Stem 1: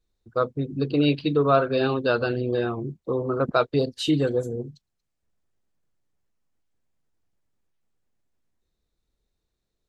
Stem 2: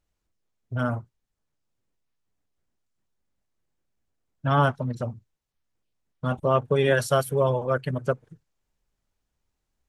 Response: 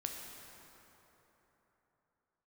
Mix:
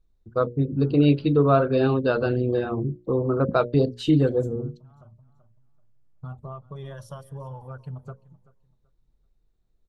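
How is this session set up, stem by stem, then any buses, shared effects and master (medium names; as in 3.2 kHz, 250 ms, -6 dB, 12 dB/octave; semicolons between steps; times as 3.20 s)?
-1.0 dB, 0.00 s, no send, no echo send, none
-9.0 dB, 0.00 s, no send, echo send -20.5 dB, drifting ripple filter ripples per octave 1.2, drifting -0.6 Hz, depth 8 dB; graphic EQ 250/500/1000/2000 Hz -8/-9/+6/-12 dB; compression 4:1, threshold -30 dBFS, peak gain reduction 11.5 dB; auto duck -20 dB, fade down 1.30 s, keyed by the first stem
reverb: none
echo: feedback delay 383 ms, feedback 24%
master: tilt EQ -2.5 dB/octave; hum notches 60/120/180/240/300/360/420/480/540/600 Hz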